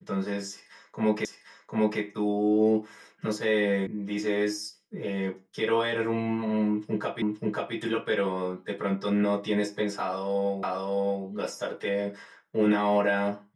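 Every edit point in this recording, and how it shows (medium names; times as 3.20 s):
1.25 s: repeat of the last 0.75 s
3.87 s: sound stops dead
7.22 s: repeat of the last 0.53 s
10.63 s: repeat of the last 0.62 s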